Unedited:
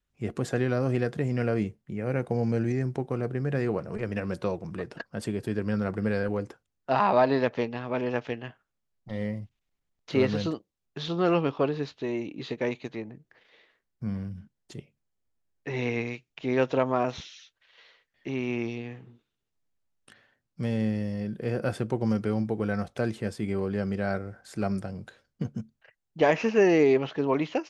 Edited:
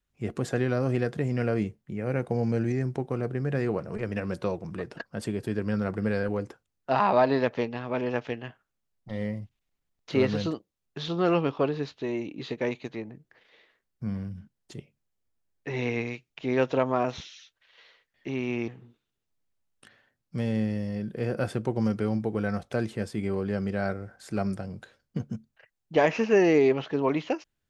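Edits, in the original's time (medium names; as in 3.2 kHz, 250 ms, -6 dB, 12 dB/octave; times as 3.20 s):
18.68–18.93 s: delete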